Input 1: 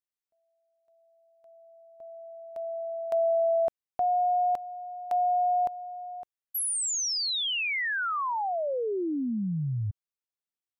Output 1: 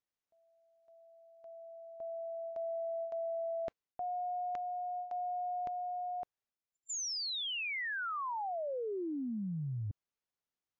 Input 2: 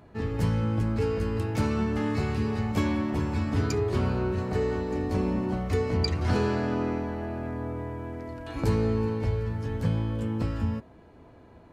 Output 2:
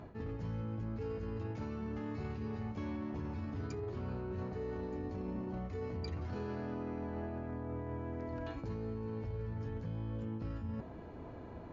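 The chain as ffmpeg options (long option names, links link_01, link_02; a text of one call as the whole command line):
ffmpeg -i in.wav -af "highshelf=frequency=2100:gain=-7.5,areverse,acompressor=threshold=-40dB:ratio=16:attack=2.9:release=122:knee=6:detection=rms,areverse,volume=5dB" -ar 16000 -c:a libmp3lame -b:a 96k out.mp3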